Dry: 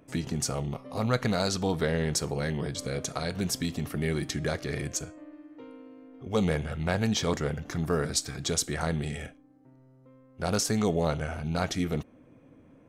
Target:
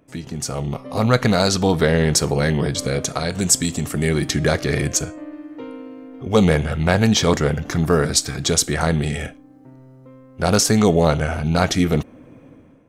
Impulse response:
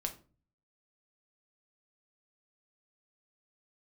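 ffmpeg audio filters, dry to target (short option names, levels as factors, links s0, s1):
-filter_complex "[0:a]asettb=1/sr,asplit=3[s0][s1][s2];[s0]atrim=end=3.324[s3];[s1]atrim=start=3.32:end=4.09,asetpts=PTS-STARTPTS,afade=t=in:d=0.004:c=qsin,afade=t=out:st=0.766:d=0.004:c=qsin,equalizer=f=7700:w=2.4:g=15[s4];[s2]atrim=start=4.086[s5];[s3][s4]acrossfade=d=0.004:c1=hsin:c2=qsin[s6];[s6][s5]acrossfade=d=0.004:c1=qsin:c2=hsin,dynaudnorm=f=240:g=5:m=4.47"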